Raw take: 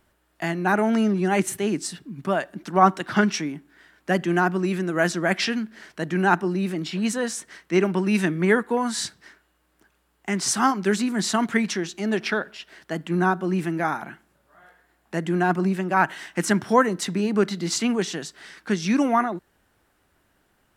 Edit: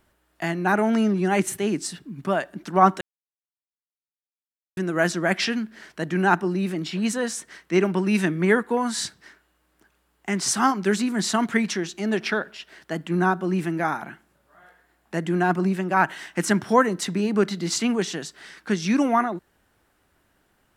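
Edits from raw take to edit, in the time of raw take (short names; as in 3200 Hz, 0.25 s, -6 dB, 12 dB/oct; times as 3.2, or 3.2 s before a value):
3.01–4.77 mute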